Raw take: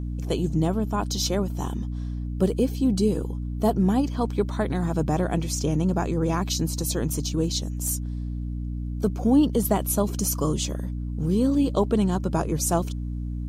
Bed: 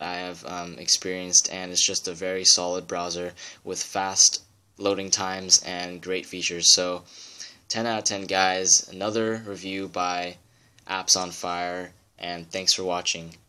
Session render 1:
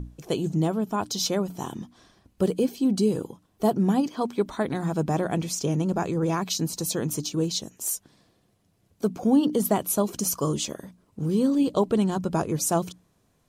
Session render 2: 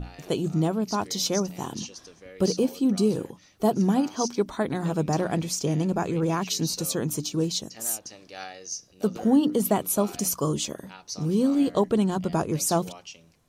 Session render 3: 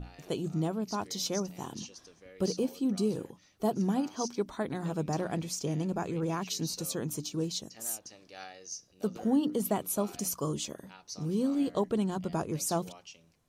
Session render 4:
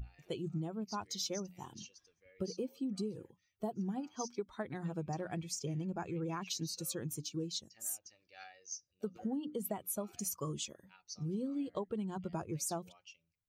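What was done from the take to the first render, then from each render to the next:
hum notches 60/120/180/240/300 Hz
add bed -17.5 dB
trim -7 dB
expander on every frequency bin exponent 1.5; compression 12:1, threshold -34 dBFS, peak gain reduction 11.5 dB

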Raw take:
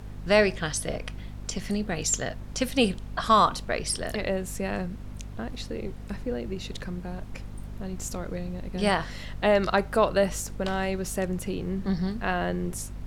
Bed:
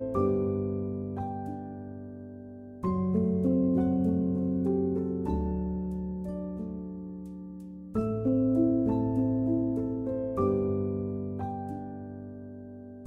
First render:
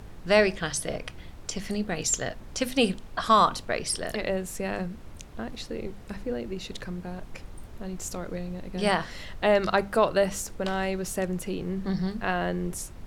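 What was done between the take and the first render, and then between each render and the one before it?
hum notches 50/100/150/200/250 Hz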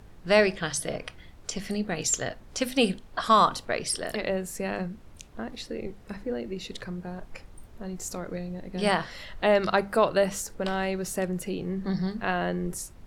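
noise print and reduce 6 dB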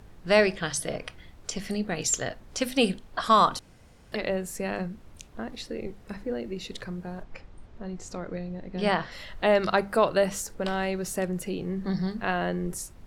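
3.59–4.12 s: room tone; 7.23–9.12 s: distance through air 97 m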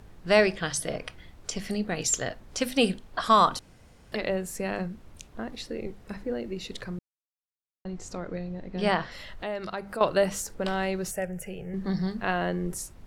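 6.99–7.85 s: mute; 9.06–10.01 s: compression 2:1, threshold -38 dBFS; 11.11–11.74 s: static phaser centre 1.1 kHz, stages 6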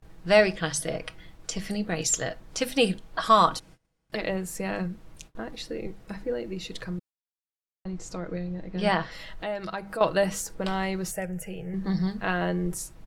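gate -49 dBFS, range -23 dB; comb 6.2 ms, depth 43%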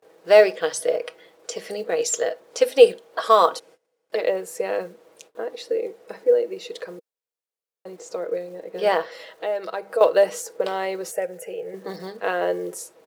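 short-mantissa float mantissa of 4-bit; resonant high-pass 470 Hz, resonance Q 4.9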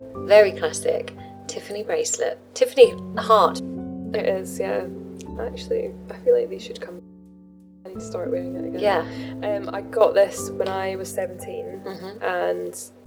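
add bed -6 dB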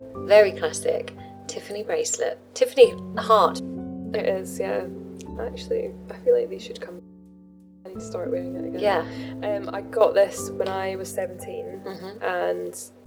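trim -1.5 dB

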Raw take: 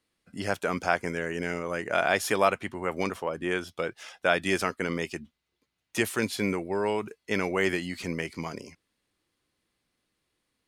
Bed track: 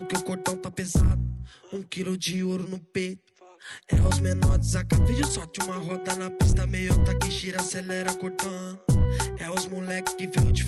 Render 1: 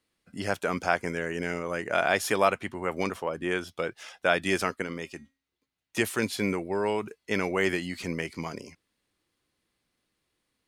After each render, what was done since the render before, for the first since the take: 4.82–5.97 s: feedback comb 270 Hz, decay 0.4 s, mix 50%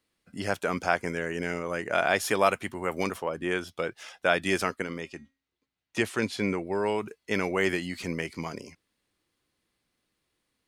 2.45–3.17 s: treble shelf 6.4 kHz -> 11 kHz +10.5 dB; 5.01–6.67 s: distance through air 50 m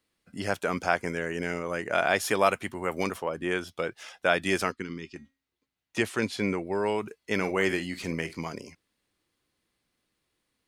4.72–5.16 s: FFT filter 370 Hz 0 dB, 660 Hz -28 dB, 930 Hz -9 dB, 5.2 kHz 0 dB, 13 kHz -22 dB; 7.36–8.36 s: doubling 48 ms -13 dB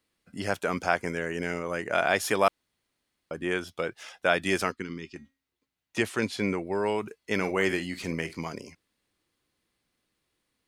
2.48–3.31 s: room tone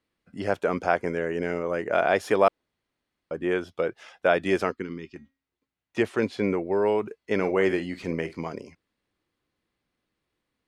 low-pass 2.4 kHz 6 dB/octave; dynamic bell 470 Hz, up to +6 dB, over -41 dBFS, Q 0.92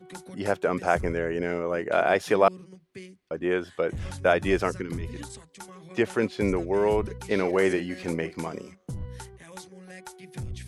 add bed track -14.5 dB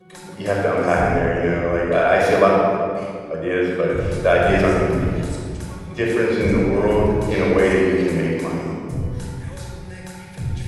simulated room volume 3900 m³, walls mixed, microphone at 5.6 m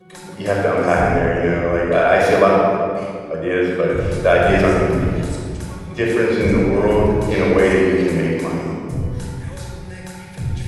trim +2 dB; peak limiter -1 dBFS, peak gain reduction 1.5 dB

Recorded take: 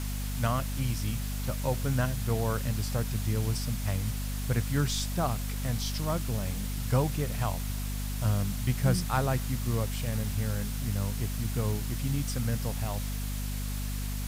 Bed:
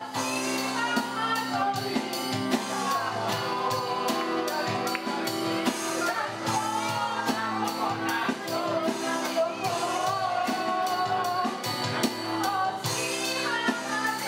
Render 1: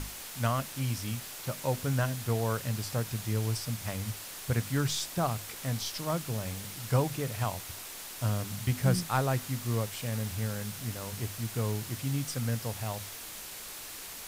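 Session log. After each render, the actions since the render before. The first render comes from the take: hum notches 50/100/150/200/250 Hz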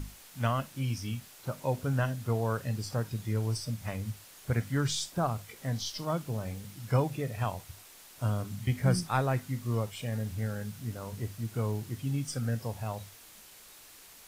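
noise print and reduce 10 dB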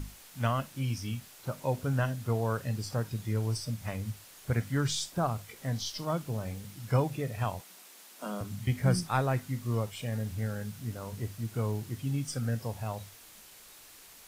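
7.61–8.41 s: steep high-pass 170 Hz 96 dB/octave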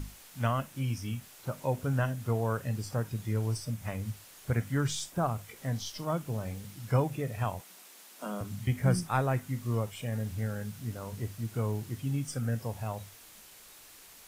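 dynamic bell 4.4 kHz, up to -6 dB, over -57 dBFS, Q 1.8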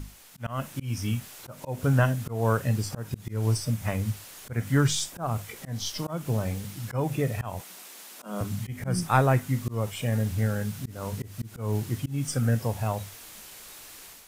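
level rider gain up to 7.5 dB; slow attack 201 ms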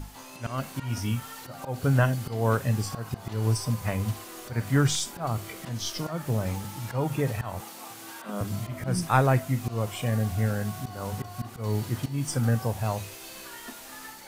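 add bed -17 dB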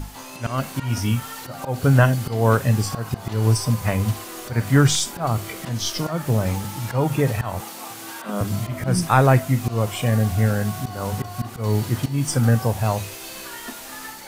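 trim +7 dB; peak limiter -3 dBFS, peak gain reduction 3 dB

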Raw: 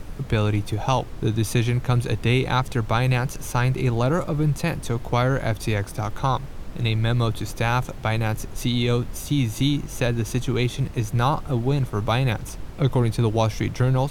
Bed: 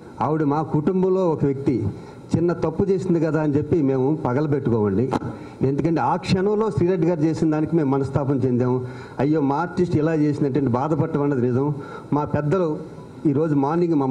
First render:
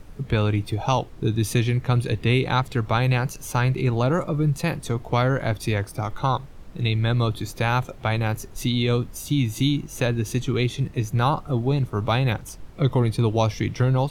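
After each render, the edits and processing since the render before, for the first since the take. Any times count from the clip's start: noise print and reduce 8 dB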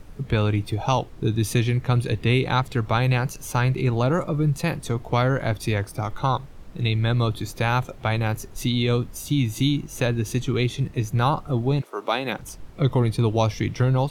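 11.80–12.38 s: high-pass 480 Hz -> 170 Hz 24 dB/octave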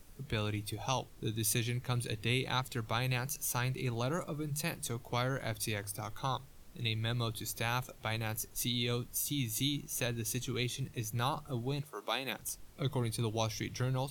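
pre-emphasis filter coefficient 0.8; hum notches 50/100/150 Hz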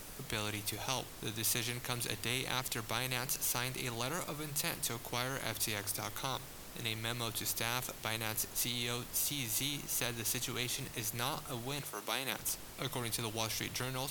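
spectrum-flattening compressor 2:1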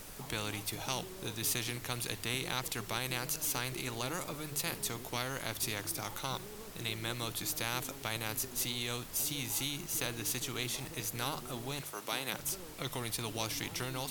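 add bed -31 dB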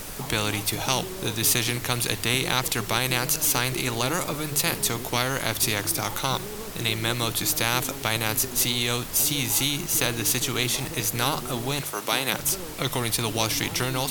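trim +12 dB

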